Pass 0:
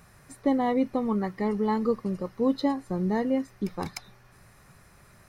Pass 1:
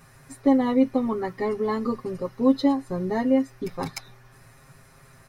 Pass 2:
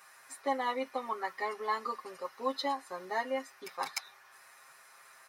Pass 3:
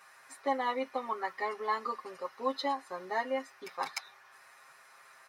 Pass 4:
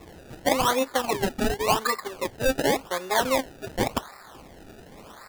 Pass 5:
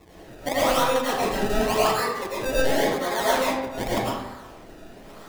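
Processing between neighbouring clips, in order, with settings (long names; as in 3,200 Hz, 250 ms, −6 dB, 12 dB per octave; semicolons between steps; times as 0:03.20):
comb filter 7.5 ms, depth 99%
Chebyshev high-pass filter 1,000 Hz, order 2
high-shelf EQ 6,700 Hz −8.5 dB; level +1 dB
in parallel at 0 dB: output level in coarse steps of 21 dB; on the sum: sample-and-hold swept by an LFO 28×, swing 100% 0.9 Hz; level +7.5 dB
convolution reverb RT60 0.95 s, pre-delay 65 ms, DRR −7.5 dB; level −6 dB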